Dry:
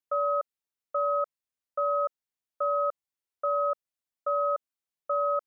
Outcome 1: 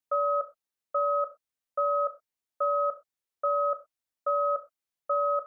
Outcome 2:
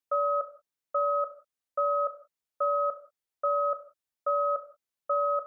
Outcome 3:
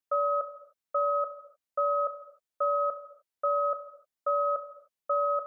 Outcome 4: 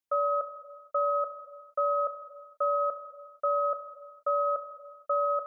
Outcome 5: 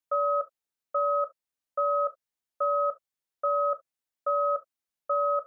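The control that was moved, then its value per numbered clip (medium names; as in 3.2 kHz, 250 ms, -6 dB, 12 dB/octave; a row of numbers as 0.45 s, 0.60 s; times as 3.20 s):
gated-style reverb, gate: 140 ms, 210 ms, 330 ms, 510 ms, 90 ms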